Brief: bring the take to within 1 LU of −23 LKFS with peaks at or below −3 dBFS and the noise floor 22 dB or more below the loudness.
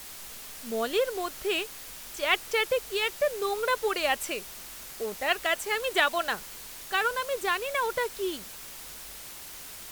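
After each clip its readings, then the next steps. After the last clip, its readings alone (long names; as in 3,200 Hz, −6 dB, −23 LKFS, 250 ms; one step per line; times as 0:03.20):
background noise floor −43 dBFS; target noise floor −51 dBFS; integrated loudness −28.5 LKFS; sample peak −9.0 dBFS; target loudness −23.0 LKFS
→ noise reduction from a noise print 8 dB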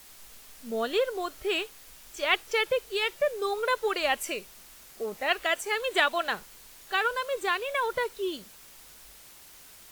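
background noise floor −51 dBFS; integrated loudness −28.5 LKFS; sample peak −9.0 dBFS; target loudness −23.0 LKFS
→ level +5.5 dB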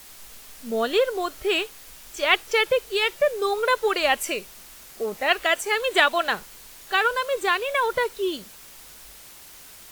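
integrated loudness −23.0 LKFS; sample peak −3.5 dBFS; background noise floor −46 dBFS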